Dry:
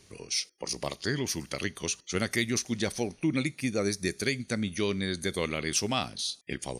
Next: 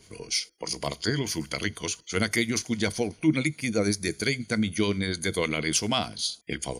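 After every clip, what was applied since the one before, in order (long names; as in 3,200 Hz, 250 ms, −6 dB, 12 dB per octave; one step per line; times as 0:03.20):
EQ curve with evenly spaced ripples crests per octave 1.8, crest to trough 7 dB
two-band tremolo in antiphase 10 Hz, depth 50%, crossover 770 Hz
level +5 dB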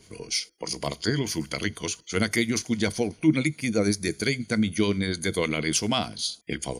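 parametric band 230 Hz +2.5 dB 2.1 octaves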